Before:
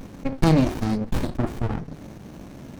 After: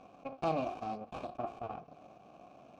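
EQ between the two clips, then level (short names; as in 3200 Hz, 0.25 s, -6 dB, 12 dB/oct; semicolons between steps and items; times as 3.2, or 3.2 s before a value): vowel filter a; low shelf 190 Hz +6.5 dB; bell 6200 Hz +5.5 dB 1.2 oct; 0.0 dB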